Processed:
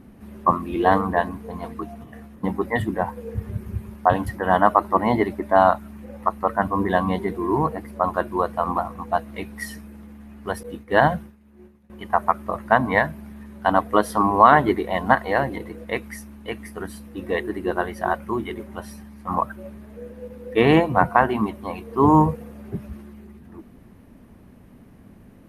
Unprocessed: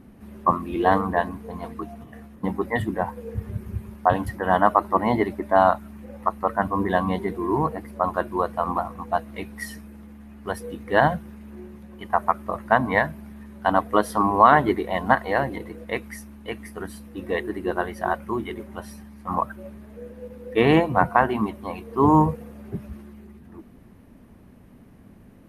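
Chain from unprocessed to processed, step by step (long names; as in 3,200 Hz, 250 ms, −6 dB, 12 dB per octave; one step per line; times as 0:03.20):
0:10.63–0:11.90: downward expander −31 dBFS
level +1.5 dB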